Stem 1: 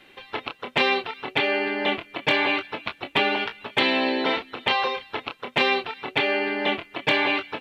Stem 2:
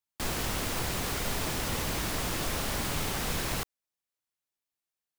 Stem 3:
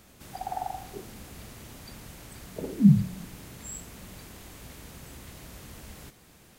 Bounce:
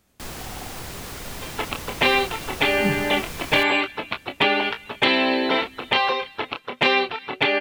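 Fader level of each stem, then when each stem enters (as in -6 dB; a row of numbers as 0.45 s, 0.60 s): +2.5 dB, -3.0 dB, -9.5 dB; 1.25 s, 0.00 s, 0.00 s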